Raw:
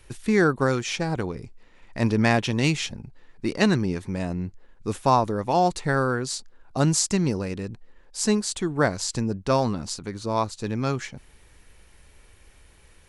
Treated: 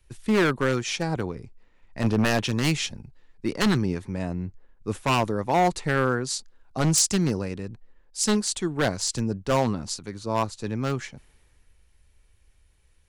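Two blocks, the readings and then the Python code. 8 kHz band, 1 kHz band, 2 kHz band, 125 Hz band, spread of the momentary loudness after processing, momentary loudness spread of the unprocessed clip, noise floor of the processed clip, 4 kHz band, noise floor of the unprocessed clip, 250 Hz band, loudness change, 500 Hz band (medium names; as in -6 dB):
+2.0 dB, -2.0 dB, -0.5 dB, -1.0 dB, 12 LU, 12 LU, -61 dBFS, +1.5 dB, -55 dBFS, -1.0 dB, -0.5 dB, -1.5 dB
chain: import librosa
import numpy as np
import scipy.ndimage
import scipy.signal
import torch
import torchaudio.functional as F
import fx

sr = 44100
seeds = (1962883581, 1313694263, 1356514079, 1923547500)

y = 10.0 ** (-15.5 / 20.0) * (np.abs((x / 10.0 ** (-15.5 / 20.0) + 3.0) % 4.0 - 2.0) - 1.0)
y = fx.band_widen(y, sr, depth_pct=40)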